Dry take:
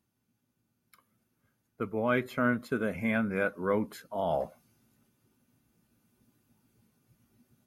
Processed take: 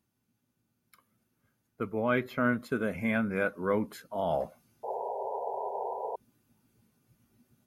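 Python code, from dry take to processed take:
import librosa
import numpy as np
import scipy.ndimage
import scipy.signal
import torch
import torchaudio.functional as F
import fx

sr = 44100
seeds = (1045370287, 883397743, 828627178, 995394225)

y = fx.peak_eq(x, sr, hz=8400.0, db=-13.0, octaves=0.49, at=(2.01, 2.46))
y = fx.spec_paint(y, sr, seeds[0], shape='noise', start_s=4.83, length_s=1.33, low_hz=380.0, high_hz=1000.0, level_db=-35.0)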